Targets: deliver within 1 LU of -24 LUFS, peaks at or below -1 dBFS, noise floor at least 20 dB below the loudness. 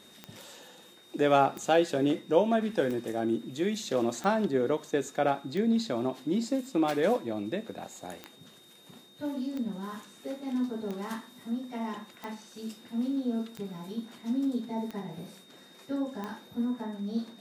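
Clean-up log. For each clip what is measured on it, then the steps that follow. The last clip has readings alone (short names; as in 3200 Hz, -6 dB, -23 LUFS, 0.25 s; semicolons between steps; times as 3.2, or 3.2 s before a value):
clicks 13; steady tone 3700 Hz; tone level -56 dBFS; loudness -30.5 LUFS; peak -10.0 dBFS; loudness target -24.0 LUFS
-> de-click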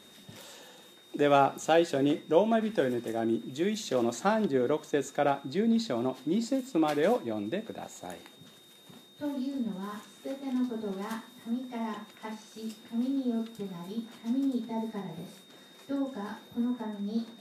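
clicks 0; steady tone 3700 Hz; tone level -56 dBFS
-> notch 3700 Hz, Q 30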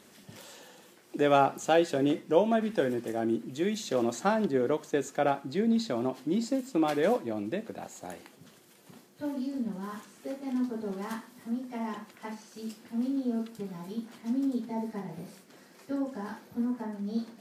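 steady tone none; loudness -30.5 LUFS; peak -10.0 dBFS; loudness target -24.0 LUFS
-> gain +6.5 dB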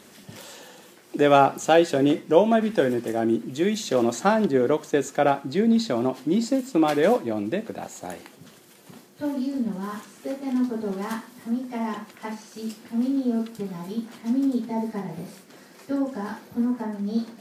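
loudness -24.0 LUFS; peak -3.5 dBFS; noise floor -51 dBFS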